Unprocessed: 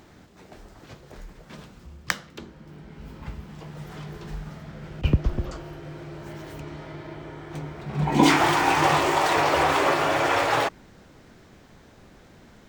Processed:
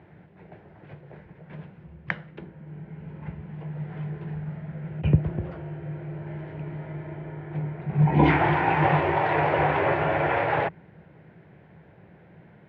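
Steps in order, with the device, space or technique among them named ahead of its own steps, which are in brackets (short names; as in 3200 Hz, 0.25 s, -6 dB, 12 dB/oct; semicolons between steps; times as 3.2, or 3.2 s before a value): sub-octave bass pedal (octaver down 2 oct, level -4 dB; speaker cabinet 81–2300 Hz, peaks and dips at 160 Hz +9 dB, 250 Hz -10 dB, 1200 Hz -10 dB)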